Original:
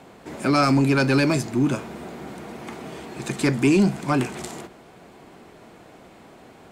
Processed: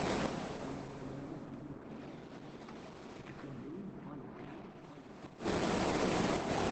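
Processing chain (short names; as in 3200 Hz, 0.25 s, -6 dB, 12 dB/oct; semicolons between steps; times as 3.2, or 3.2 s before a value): low shelf 92 Hz -2.5 dB; decimation with a swept rate 12×, swing 60% 2.4 Hz; limiter -22.5 dBFS, peak gain reduction 11.5 dB; resonator 190 Hz, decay 0.26 s, harmonics odd, mix 30%; modulation noise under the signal 30 dB; outdoor echo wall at 140 m, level -11 dB; treble ducked by the level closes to 940 Hz, closed at -28 dBFS; flipped gate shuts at -38 dBFS, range -41 dB; upward compressor, threshold -53 dBFS; 1.67–3.89 high shelf 5900 Hz +6.5 dB; plate-style reverb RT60 4.7 s, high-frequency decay 0.75×, DRR 3 dB; gain +16.5 dB; Opus 12 kbps 48000 Hz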